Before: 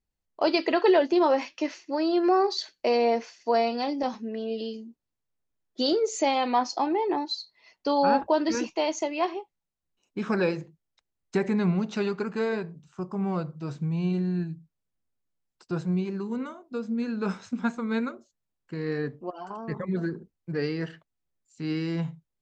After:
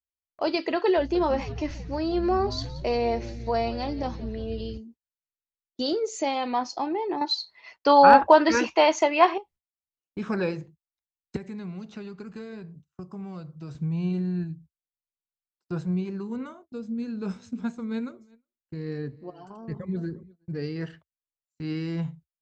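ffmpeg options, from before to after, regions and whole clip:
-filter_complex "[0:a]asettb=1/sr,asplit=3[a][b][c];[a]atrim=end=0.974[d];[b]atrim=start=0.97:end=4.78,asetpts=PTS-STARTPTS,afade=t=in:d=0.004:c=qsin,afade=t=out:st=3.806:d=0.004:c=qsin,aeval=exprs='val(0)+0.00562*(sin(2*PI*60*n/s)+sin(2*PI*2*60*n/s)/2+sin(2*PI*3*60*n/s)/3+sin(2*PI*4*60*n/s)/4+sin(2*PI*5*60*n/s)/5)':c=same,asplit=8[e][f][g][h][i][j][k][l];[f]adelay=176,afreqshift=-120,volume=-16dB[m];[g]adelay=352,afreqshift=-240,volume=-19.7dB[n];[h]adelay=528,afreqshift=-360,volume=-23.5dB[o];[i]adelay=704,afreqshift=-480,volume=-27.2dB[p];[j]adelay=880,afreqshift=-600,volume=-31dB[q];[k]adelay=1056,afreqshift=-720,volume=-34.7dB[r];[l]adelay=1232,afreqshift=-840,volume=-38.5dB[s];[e][m][n][o][p][q][r][s]amix=inputs=8:normalize=0,atrim=end_sample=168021[t];[c]atrim=start=4.776[u];[d][t]acrossfade=d=0.004:c1=hsin:c2=qsin[v];[v][u]acrossfade=d=0.004:c1=qsin:c2=hsin,asettb=1/sr,asplit=3[w][x][y];[w]atrim=end=7.214[z];[x]atrim=start=7.21:end=9.38,asetpts=PTS-STARTPTS,afade=t=in:d=0.004:c=qsin,afade=t=out:st=2.166:d=0.004:c=qsin,equalizer=f=1.4k:w=0.34:g=15,asoftclip=type=hard:threshold=-1dB[aa];[y]atrim=start=9.376[ab];[z][aa]acrossfade=d=0.004:c1=hsin:c2=qsin[ac];[ac][ab]acrossfade=d=0.004:c1=qsin:c2=hsin,asettb=1/sr,asplit=3[ad][ae][af];[ad]atrim=end=11.364[ag];[ae]atrim=start=11.36:end=13.75,asetpts=PTS-STARTPTS,afade=t=in:d=0.004:c=qsin,afade=t=out:st=2.386:d=0.004:c=qsin,bandreject=f=910:w=18,acrossover=split=230|2900[ah][ai][aj];[ah]acompressor=threshold=-40dB:ratio=4[ak];[ai]acompressor=threshold=-41dB:ratio=4[al];[aj]acompressor=threshold=-55dB:ratio=4[am];[ak][al][am]amix=inputs=3:normalize=0[an];[af]atrim=start=13.746[ao];[ag][an]acrossfade=d=0.004:c1=hsin:c2=qsin[ap];[ap][ao]acrossfade=d=0.004:c1=qsin:c2=hsin,asettb=1/sr,asplit=3[aq][ar][as];[aq]atrim=end=16.654[at];[ar]atrim=start=16.65:end=20.76,asetpts=PTS-STARTPTS,afade=t=in:d=0.004:c=qsin,afade=t=out:st=4.106:d=0.004:c=qsin,equalizer=f=1.3k:w=0.57:g=-7.5,aecho=1:1:358:0.0794,atrim=end_sample=181251[au];[as]atrim=start=20.756[av];[at][au]acrossfade=d=0.004:c1=hsin:c2=qsin[aw];[aw][av]acrossfade=d=0.004:c1=qsin:c2=hsin,agate=range=-26dB:threshold=-48dB:ratio=16:detection=peak,equalizer=f=72:w=1.1:g=14,volume=-3dB"

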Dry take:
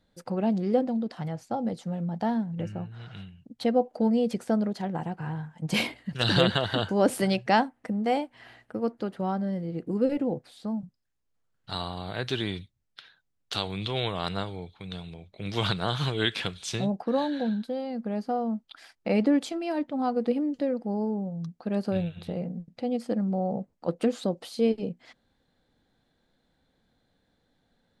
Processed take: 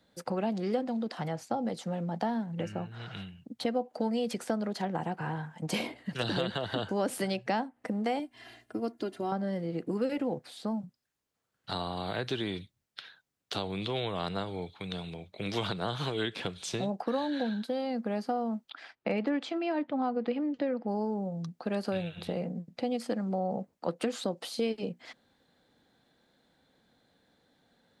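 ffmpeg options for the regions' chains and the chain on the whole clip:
-filter_complex "[0:a]asettb=1/sr,asplit=3[a][b][c];[a]atrim=end=8.194[d];[b]atrim=start=8.19:end=9.32,asetpts=PTS-STARTPTS,afade=t=in:d=0.004:c=qsin,afade=t=out:st=1.126:d=0.004:c=qsin,equalizer=f=1.1k:w=0.39:g=-9,aecho=1:1:2.9:0.78,atrim=end_sample=49833[e];[c]atrim=start=9.316[f];[d][e]acrossfade=d=0.004:c1=hsin:c2=qsin[g];[g][f]acrossfade=d=0.004:c1=qsin:c2=hsin,asettb=1/sr,asplit=3[h][i][j];[h]atrim=end=18.704[k];[i]atrim=start=18.7:end=20.88,asetpts=PTS-STARTPTS,afade=t=in:d=0.004:c=qsin,afade=t=out:st=2.176:d=0.004:c=qsin,lowpass=3.2k,asoftclip=type=hard:threshold=-14.5dB[l];[j]atrim=start=20.876[m];[k][l]acrossfade=d=0.004:c1=hsin:c2=qsin[n];[n][m]acrossfade=d=0.004:c1=qsin:c2=hsin,highpass=f=190:p=1,acrossover=split=240|850[o][p][q];[o]acompressor=threshold=-43dB:ratio=4[r];[p]acompressor=threshold=-38dB:ratio=4[s];[q]acompressor=threshold=-42dB:ratio=4[t];[r][s][t]amix=inputs=3:normalize=0,volume=4.5dB"

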